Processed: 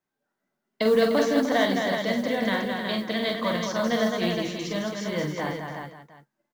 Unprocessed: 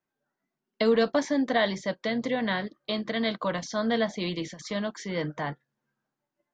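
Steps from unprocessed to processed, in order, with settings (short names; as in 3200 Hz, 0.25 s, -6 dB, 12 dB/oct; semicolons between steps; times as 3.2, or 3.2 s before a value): tapped delay 46/212/301/366/532/706 ms -5.5/-5/-9/-6/-15.5/-19.5 dB; modulation noise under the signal 28 dB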